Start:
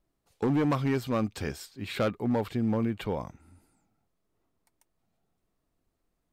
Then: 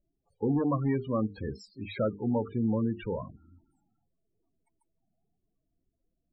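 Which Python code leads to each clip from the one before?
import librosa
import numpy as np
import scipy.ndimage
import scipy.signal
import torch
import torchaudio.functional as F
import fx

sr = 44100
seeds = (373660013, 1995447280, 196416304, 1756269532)

y = fx.hum_notches(x, sr, base_hz=50, count=9)
y = fx.env_lowpass_down(y, sr, base_hz=2500.0, full_db=-25.5)
y = fx.spec_topn(y, sr, count=16)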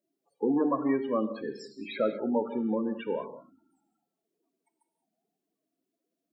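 y = scipy.signal.sosfilt(scipy.signal.butter(4, 240.0, 'highpass', fs=sr, output='sos'), x)
y = fx.rev_gated(y, sr, seeds[0], gate_ms=230, shape='flat', drr_db=9.0)
y = F.gain(torch.from_numpy(y), 2.5).numpy()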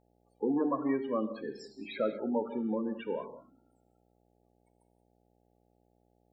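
y = fx.dmg_buzz(x, sr, base_hz=60.0, harmonics=14, level_db=-67.0, tilt_db=-2, odd_only=False)
y = F.gain(torch.from_numpy(y), -3.5).numpy()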